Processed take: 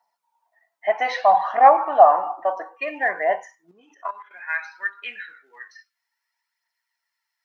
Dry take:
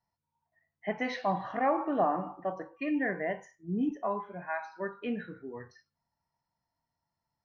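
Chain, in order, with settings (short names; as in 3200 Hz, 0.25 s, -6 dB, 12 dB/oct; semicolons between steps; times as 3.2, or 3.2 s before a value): phaser 0.6 Hz, delay 3.4 ms, feedback 38%; 3.71–4.31 level quantiser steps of 14 dB; high-pass sweep 760 Hz -> 1900 Hz, 3.43–4.39; gain +8 dB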